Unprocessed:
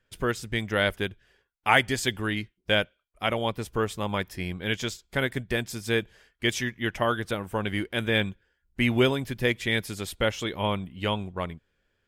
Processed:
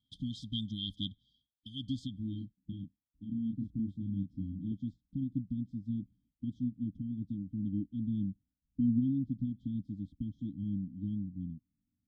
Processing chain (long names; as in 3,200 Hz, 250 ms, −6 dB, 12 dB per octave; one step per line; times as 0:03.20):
high-pass filter 190 Hz 6 dB per octave
brickwall limiter −16.5 dBFS, peak gain reduction 11.5 dB
linear-phase brick-wall band-stop 300–3,100 Hz
0:02.18–0:04.72: double-tracking delay 31 ms −4 dB
low-pass filter sweep 2,500 Hz → 440 Hz, 0:01.64–0:02.86